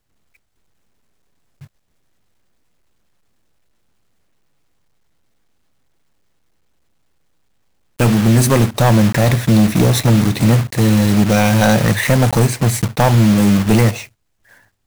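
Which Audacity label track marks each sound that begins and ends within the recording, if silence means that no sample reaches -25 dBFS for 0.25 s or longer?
7.990000	14.040000	sound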